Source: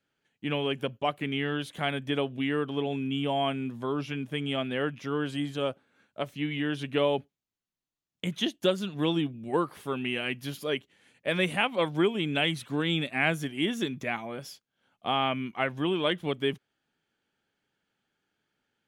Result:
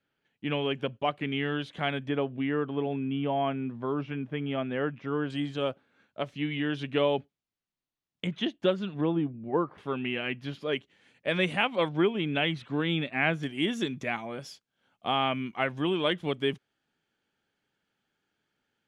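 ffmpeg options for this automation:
-af "asetnsamples=n=441:p=0,asendcmd='2.09 lowpass f 2000;5.3 lowpass f 5300;8.27 lowpass f 2900;9.01 lowpass f 1300;9.78 lowpass f 3200;10.73 lowpass f 6100;11.89 lowpass f 3300;13.43 lowpass f 8500',lowpass=4300"

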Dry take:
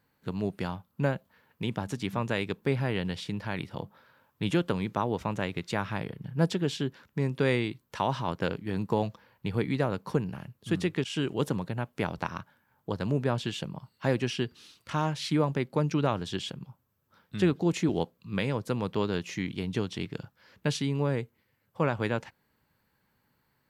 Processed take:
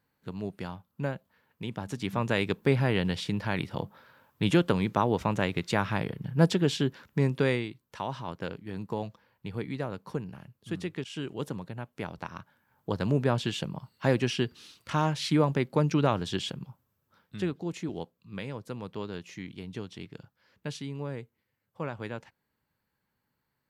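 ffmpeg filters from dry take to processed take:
-af "volume=3.76,afade=t=in:st=1.73:d=0.74:silence=0.398107,afade=t=out:st=7.23:d=0.46:silence=0.334965,afade=t=in:st=12.29:d=0.67:silence=0.398107,afade=t=out:st=16.6:d=0.96:silence=0.316228"

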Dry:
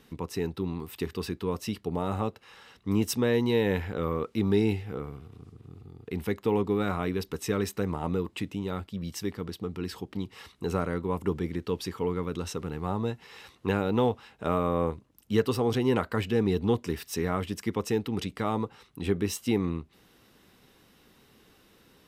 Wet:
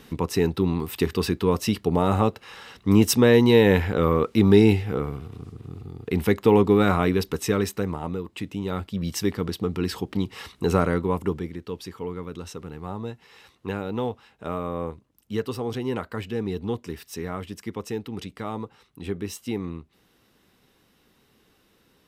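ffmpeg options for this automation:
-af "volume=9.44,afade=t=out:st=6.94:d=1.29:silence=0.266073,afade=t=in:st=8.23:d=0.94:silence=0.298538,afade=t=out:st=10.87:d=0.66:silence=0.281838"

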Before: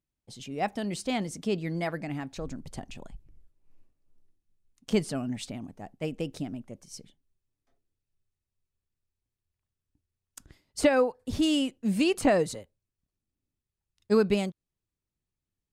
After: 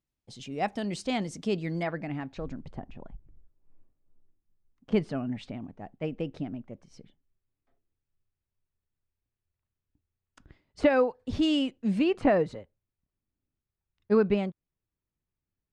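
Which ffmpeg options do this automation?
-af "asetnsamples=n=441:p=0,asendcmd='1.83 lowpass f 3100;2.73 lowpass f 1500;4.92 lowpass f 2600;10.9 lowpass f 4300;11.99 lowpass f 2300',lowpass=7100"

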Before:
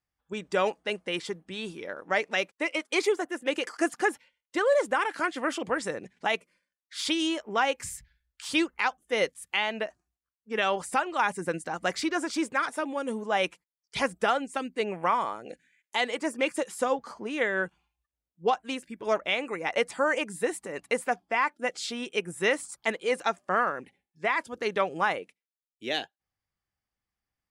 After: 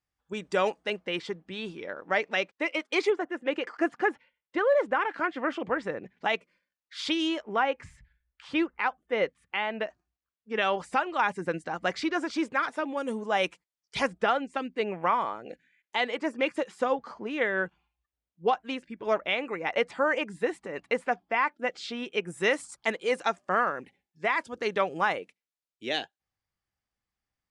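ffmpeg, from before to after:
-af "asetnsamples=n=441:p=0,asendcmd='0.9 lowpass f 4500;3.1 lowpass f 2500;6.18 lowpass f 4500;7.56 lowpass f 2200;9.81 lowpass f 4500;12.97 lowpass f 8100;14.07 lowpass f 3900;22.27 lowpass f 7800',lowpass=9000"

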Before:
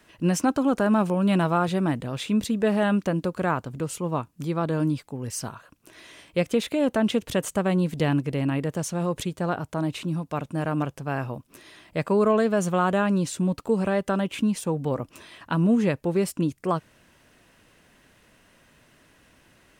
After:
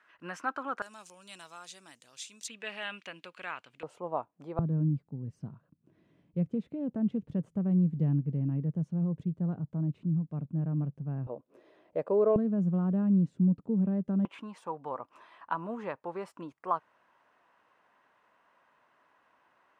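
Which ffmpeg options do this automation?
-af "asetnsamples=n=441:p=0,asendcmd='0.82 bandpass f 6500;2.48 bandpass f 2600;3.83 bandpass f 720;4.59 bandpass f 160;11.27 bandpass f 510;12.36 bandpass f 180;14.25 bandpass f 1000',bandpass=f=1400:t=q:w=2.4:csg=0"

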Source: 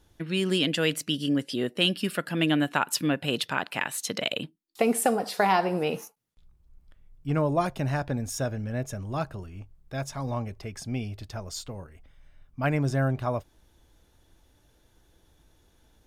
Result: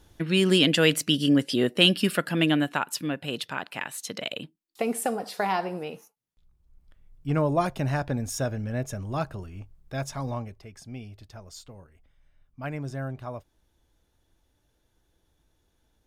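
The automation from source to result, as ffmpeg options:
-af "volume=7.94,afade=t=out:st=2.02:d=0.9:silence=0.354813,afade=t=out:st=5.61:d=0.42:silence=0.398107,afade=t=in:st=6.03:d=1.27:silence=0.223872,afade=t=out:st=10.19:d=0.42:silence=0.354813"

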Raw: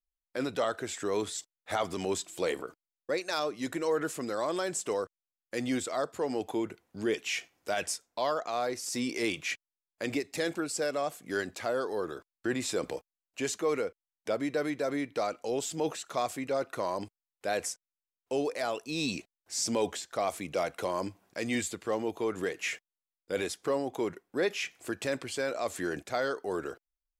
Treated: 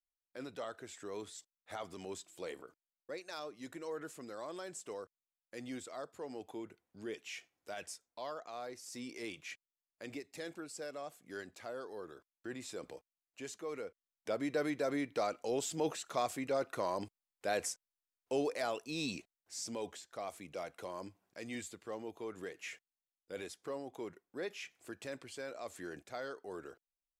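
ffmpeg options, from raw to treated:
-af "volume=0.668,afade=t=in:st=13.72:d=0.89:silence=0.334965,afade=t=out:st=18.51:d=1.19:silence=0.375837"

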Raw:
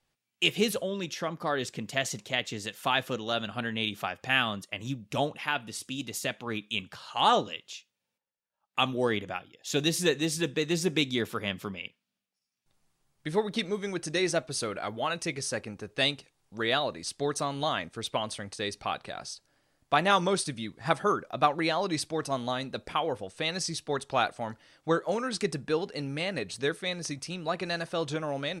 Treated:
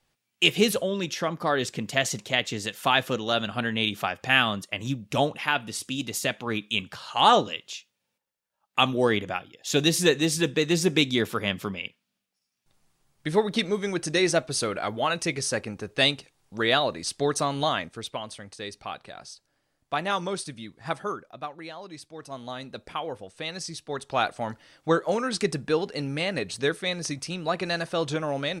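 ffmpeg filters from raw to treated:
-af "volume=11.2,afade=t=out:st=17.6:d=0.57:silence=0.375837,afade=t=out:st=20.97:d=0.5:silence=0.375837,afade=t=in:st=22.1:d=0.6:silence=0.354813,afade=t=in:st=23.87:d=0.55:silence=0.446684"

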